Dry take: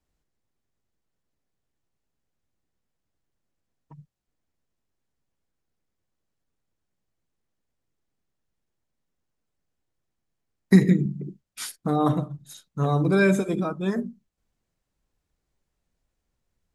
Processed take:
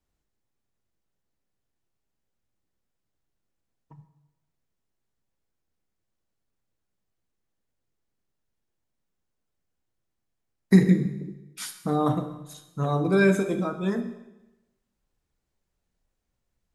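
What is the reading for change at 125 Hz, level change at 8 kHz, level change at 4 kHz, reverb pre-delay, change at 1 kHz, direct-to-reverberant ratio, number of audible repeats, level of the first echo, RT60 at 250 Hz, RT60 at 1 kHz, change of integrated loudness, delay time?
-1.5 dB, -1.5 dB, -1.0 dB, 5 ms, -1.5 dB, 7.5 dB, no echo, no echo, 1.1 s, 0.95 s, -1.0 dB, no echo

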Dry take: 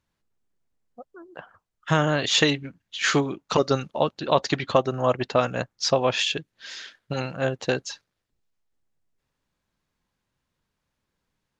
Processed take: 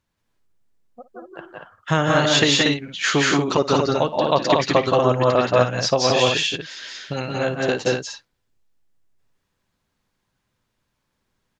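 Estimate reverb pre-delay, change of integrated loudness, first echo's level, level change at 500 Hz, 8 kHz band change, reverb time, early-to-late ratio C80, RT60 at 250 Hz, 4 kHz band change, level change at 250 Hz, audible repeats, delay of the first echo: no reverb, +5.0 dB, -16.5 dB, +5.5 dB, +5.0 dB, no reverb, no reverb, no reverb, +5.0 dB, +5.5 dB, 3, 56 ms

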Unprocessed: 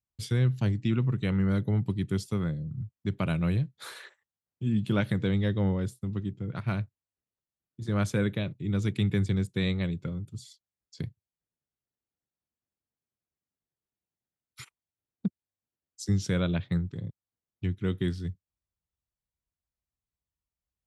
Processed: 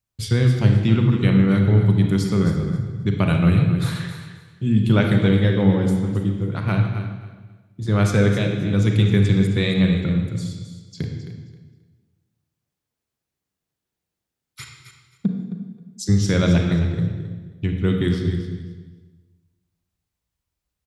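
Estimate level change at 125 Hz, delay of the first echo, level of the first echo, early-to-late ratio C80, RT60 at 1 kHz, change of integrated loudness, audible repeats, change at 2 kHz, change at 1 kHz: +11.0 dB, 266 ms, -11.0 dB, 5.0 dB, 1.3 s, +10.5 dB, 2, +10.0 dB, +10.0 dB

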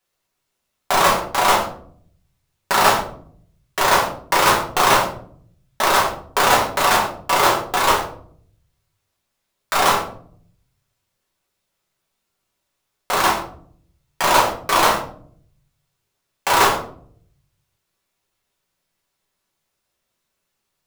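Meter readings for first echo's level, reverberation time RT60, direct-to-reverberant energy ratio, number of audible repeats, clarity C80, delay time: no echo, 0.55 s, -4.0 dB, no echo, 11.5 dB, no echo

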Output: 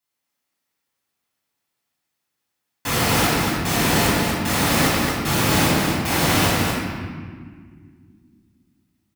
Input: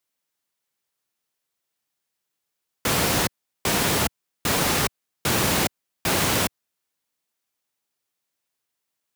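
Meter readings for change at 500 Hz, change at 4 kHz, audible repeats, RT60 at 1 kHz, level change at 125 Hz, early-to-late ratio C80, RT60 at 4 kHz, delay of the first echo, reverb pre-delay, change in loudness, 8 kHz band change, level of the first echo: +4.0 dB, +3.0 dB, 1, 1.7 s, +7.5 dB, -2.0 dB, 1.2 s, 237 ms, 7 ms, +4.0 dB, +1.5 dB, -3.5 dB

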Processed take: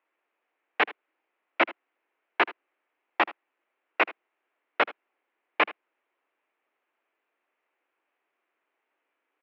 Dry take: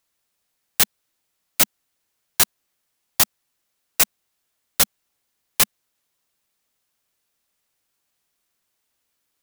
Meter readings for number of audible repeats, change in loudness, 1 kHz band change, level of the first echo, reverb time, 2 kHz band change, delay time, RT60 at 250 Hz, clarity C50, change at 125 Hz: 1, -8.0 dB, +4.5 dB, -18.5 dB, no reverb, +2.5 dB, 78 ms, no reverb, no reverb, under -20 dB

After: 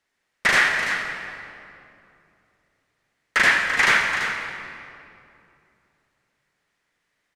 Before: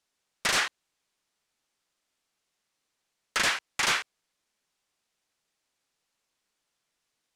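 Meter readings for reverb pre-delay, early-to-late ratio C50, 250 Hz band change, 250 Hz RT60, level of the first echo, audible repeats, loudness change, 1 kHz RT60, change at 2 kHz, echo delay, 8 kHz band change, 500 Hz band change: 37 ms, 2.0 dB, +8.0 dB, 3.2 s, -10.0 dB, 1, +7.0 dB, 2.5 s, +12.5 dB, 338 ms, -0.5 dB, +7.5 dB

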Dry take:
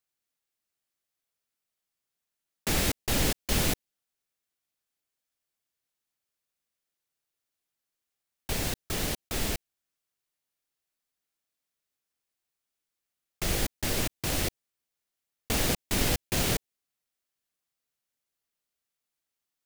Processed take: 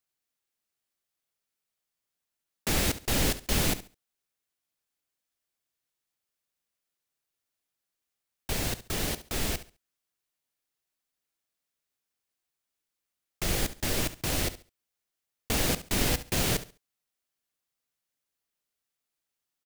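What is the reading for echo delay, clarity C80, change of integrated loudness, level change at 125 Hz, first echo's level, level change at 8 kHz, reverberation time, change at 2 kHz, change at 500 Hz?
69 ms, no reverb, 0.0 dB, 0.0 dB, -14.5 dB, 0.0 dB, no reverb, 0.0 dB, 0.0 dB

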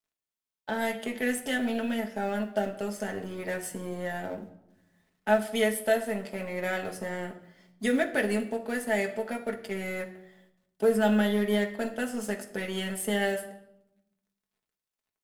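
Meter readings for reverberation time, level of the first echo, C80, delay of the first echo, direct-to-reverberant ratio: 0.85 s, no echo, 15.0 dB, no echo, 1.0 dB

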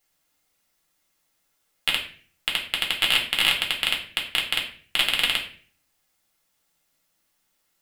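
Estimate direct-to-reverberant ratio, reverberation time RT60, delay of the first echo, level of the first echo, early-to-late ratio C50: -1.5 dB, 0.45 s, no echo, no echo, 8.5 dB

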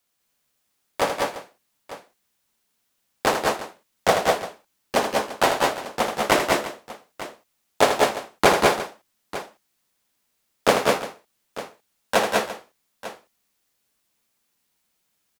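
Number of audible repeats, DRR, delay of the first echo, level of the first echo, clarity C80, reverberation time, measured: 4, no reverb, 80 ms, -8.0 dB, no reverb, no reverb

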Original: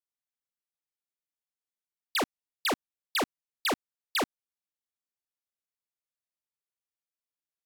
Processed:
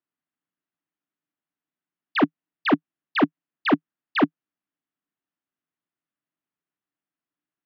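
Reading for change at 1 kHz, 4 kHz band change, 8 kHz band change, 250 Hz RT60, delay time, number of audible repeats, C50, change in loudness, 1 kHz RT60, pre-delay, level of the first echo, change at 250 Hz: +7.0 dB, -1.5 dB, under -25 dB, no reverb, no echo, no echo, no reverb, +7.5 dB, no reverb, no reverb, no echo, +15.5 dB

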